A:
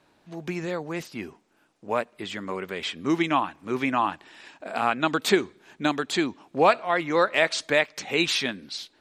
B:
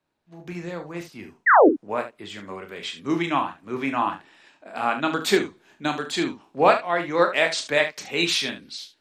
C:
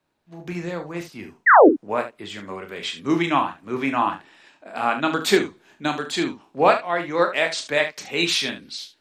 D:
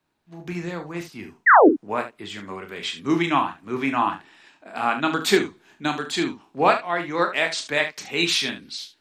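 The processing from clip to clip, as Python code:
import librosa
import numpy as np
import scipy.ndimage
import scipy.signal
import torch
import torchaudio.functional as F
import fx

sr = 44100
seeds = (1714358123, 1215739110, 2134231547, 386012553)

y1 = fx.spec_paint(x, sr, seeds[0], shape='fall', start_s=1.46, length_s=0.23, low_hz=260.0, high_hz=2100.0, level_db=-15.0)
y1 = fx.room_early_taps(y1, sr, ms=(29, 41, 73), db=(-9.0, -10.5, -10.5))
y1 = fx.band_widen(y1, sr, depth_pct=40)
y1 = y1 * librosa.db_to_amplitude(-1.0)
y2 = fx.rider(y1, sr, range_db=4, speed_s=2.0)
y3 = fx.peak_eq(y2, sr, hz=550.0, db=-5.5, octaves=0.46)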